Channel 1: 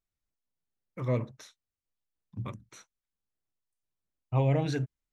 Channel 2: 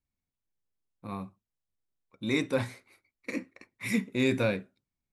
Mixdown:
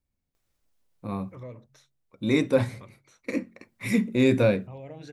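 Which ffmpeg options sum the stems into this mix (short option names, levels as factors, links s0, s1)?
-filter_complex "[0:a]acontrast=61,alimiter=limit=0.112:level=0:latency=1:release=216,acompressor=mode=upward:threshold=0.00631:ratio=2.5,adelay=350,volume=0.188[s0];[1:a]lowshelf=f=440:g=7,volume=1.12[s1];[s0][s1]amix=inputs=2:normalize=0,equalizer=f=550:t=o:w=0.66:g=4,bandreject=f=45.4:t=h:w=4,bandreject=f=90.8:t=h:w=4,bandreject=f=136.2:t=h:w=4,bandreject=f=181.6:t=h:w=4,bandreject=f=227:t=h:w=4"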